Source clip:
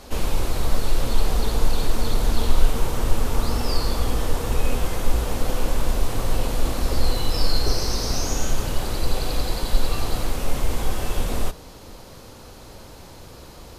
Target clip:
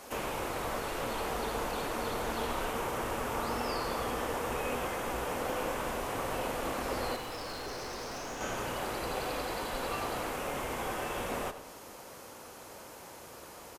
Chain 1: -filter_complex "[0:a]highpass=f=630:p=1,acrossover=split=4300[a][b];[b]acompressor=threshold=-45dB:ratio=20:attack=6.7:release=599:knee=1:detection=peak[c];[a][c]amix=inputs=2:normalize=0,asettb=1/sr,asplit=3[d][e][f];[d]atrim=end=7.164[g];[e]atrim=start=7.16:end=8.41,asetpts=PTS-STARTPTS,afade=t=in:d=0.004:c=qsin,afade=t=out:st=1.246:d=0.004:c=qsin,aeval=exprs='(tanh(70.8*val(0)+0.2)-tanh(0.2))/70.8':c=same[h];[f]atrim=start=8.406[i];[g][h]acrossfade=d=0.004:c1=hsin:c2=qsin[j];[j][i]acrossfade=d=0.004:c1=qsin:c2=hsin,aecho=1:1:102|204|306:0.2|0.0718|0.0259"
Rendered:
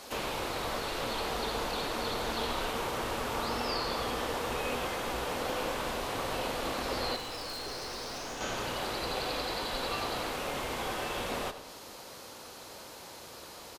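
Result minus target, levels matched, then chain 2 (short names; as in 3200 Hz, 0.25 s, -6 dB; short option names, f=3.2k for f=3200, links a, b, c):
4000 Hz band +5.0 dB
-filter_complex "[0:a]highpass=f=630:p=1,equalizer=f=4.1k:w=1.6:g=-9.5,acrossover=split=4300[a][b];[b]acompressor=threshold=-45dB:ratio=20:attack=6.7:release=599:knee=1:detection=peak[c];[a][c]amix=inputs=2:normalize=0,asettb=1/sr,asplit=3[d][e][f];[d]atrim=end=7.164[g];[e]atrim=start=7.16:end=8.41,asetpts=PTS-STARTPTS,afade=t=in:d=0.004:c=qsin,afade=t=out:st=1.246:d=0.004:c=qsin,aeval=exprs='(tanh(70.8*val(0)+0.2)-tanh(0.2))/70.8':c=same[h];[f]atrim=start=8.406[i];[g][h]acrossfade=d=0.004:c1=hsin:c2=qsin[j];[j][i]acrossfade=d=0.004:c1=qsin:c2=hsin,aecho=1:1:102|204|306:0.2|0.0718|0.0259"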